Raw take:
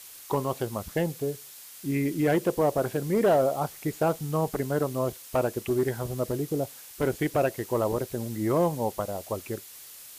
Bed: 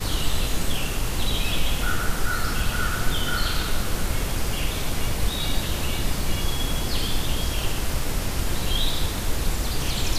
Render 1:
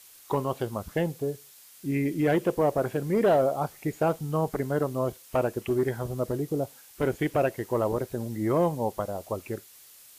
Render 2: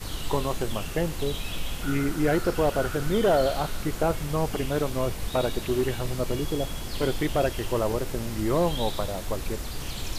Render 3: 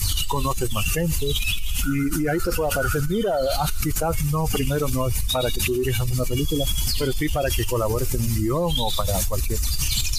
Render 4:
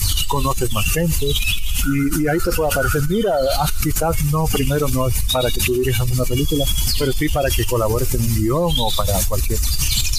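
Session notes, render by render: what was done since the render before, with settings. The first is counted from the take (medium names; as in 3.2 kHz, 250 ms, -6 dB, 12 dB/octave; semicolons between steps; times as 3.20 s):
noise print and reduce 6 dB
add bed -8.5 dB
expander on every frequency bin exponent 2; level flattener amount 100%
trim +4.5 dB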